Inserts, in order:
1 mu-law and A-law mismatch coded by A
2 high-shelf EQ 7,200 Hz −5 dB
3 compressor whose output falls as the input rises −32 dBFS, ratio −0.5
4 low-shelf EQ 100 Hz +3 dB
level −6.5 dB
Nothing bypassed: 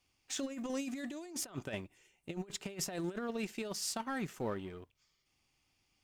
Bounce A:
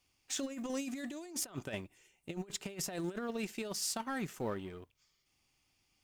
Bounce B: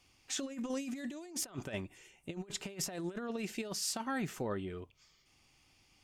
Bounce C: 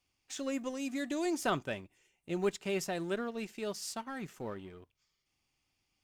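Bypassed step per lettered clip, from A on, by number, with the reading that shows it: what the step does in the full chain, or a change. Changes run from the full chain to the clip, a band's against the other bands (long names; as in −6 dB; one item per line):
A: 2, 8 kHz band +2.0 dB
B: 1, distortion level −22 dB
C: 3, change in momentary loudness spread +2 LU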